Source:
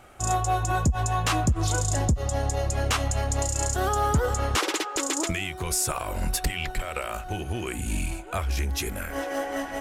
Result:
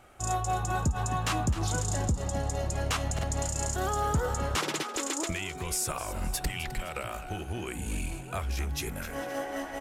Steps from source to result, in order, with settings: frequency-shifting echo 259 ms, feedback 40%, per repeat +82 Hz, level -13 dB; buffer glitch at 3.14 s, samples 2048, times 1; trim -5 dB

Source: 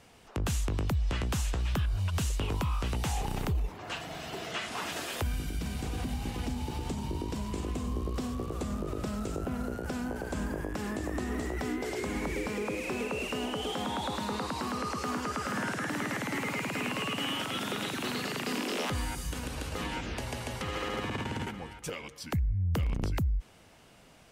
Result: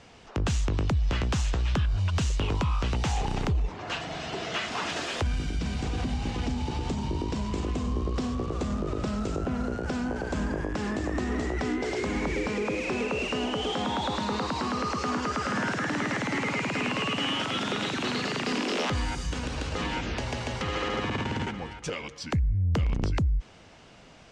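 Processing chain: low-pass 6.9 kHz 24 dB/octave; in parallel at -5 dB: saturation -30.5 dBFS, distortion -13 dB; on the sum: trim +1.5 dB

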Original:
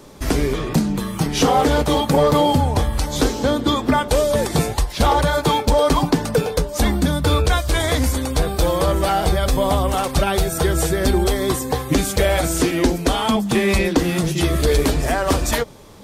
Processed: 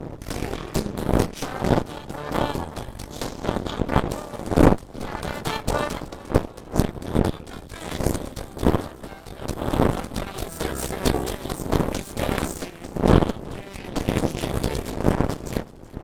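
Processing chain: wind noise 280 Hz -13 dBFS; Chebyshev shaper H 4 -8 dB, 7 -18 dB, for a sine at 9.5 dBFS; level rider; frequency-shifting echo 374 ms, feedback 55%, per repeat -38 Hz, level -20 dB; trim -1 dB

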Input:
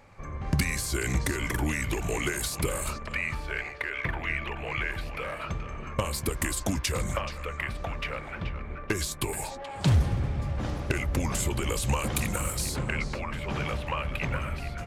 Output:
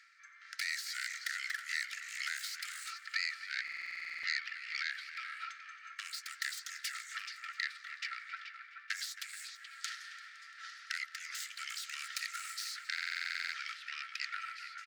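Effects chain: self-modulated delay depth 0.11 ms; speakerphone echo 270 ms, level -11 dB; reverse; upward compressor, threshold -36 dBFS; reverse; rippled Chebyshev high-pass 1.3 kHz, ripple 9 dB; treble shelf 8.3 kHz -10.5 dB; on a send: multi-head delay 171 ms, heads first and second, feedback 58%, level -24 dB; on the sum: buffer glitch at 3.63/12.93 s, samples 2048, times 12; trim +2 dB

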